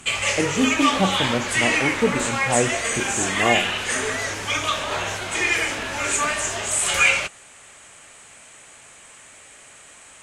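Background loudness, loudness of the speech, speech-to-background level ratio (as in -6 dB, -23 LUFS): -21.5 LUFS, -25.0 LUFS, -3.5 dB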